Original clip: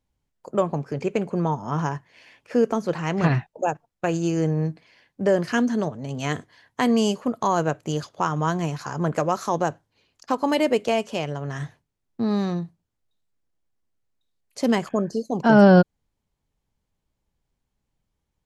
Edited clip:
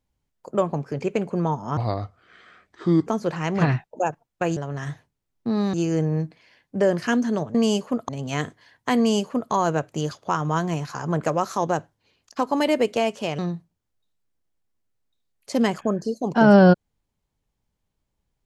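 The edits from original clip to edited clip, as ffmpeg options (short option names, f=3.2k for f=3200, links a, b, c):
-filter_complex "[0:a]asplit=8[a][b][c][d][e][f][g][h];[a]atrim=end=1.774[i];[b]atrim=start=1.77:end=2.69,asetpts=PTS-STARTPTS,asetrate=31311,aresample=44100[j];[c]atrim=start=2.686:end=4.192[k];[d]atrim=start=11.298:end=12.472[l];[e]atrim=start=4.188:end=6.002[m];[f]atrim=start=6.888:end=7.432[n];[g]atrim=start=5.998:end=11.302[o];[h]atrim=start=12.468[p];[i][j]acrossfade=d=0.004:c1=hsin:c2=hsin[q];[q][k]acrossfade=d=0.004:c1=hsin:c2=hsin[r];[r][l]acrossfade=d=0.004:c1=hsin:c2=hsin[s];[s][m]acrossfade=d=0.004:c1=hsin:c2=hsin[t];[t][n]acrossfade=d=0.004:c1=hsin:c2=hsin[u];[u][o]acrossfade=d=0.004:c1=hsin:c2=hsin[v];[v][p]acrossfade=d=0.004:c1=hsin:c2=hsin"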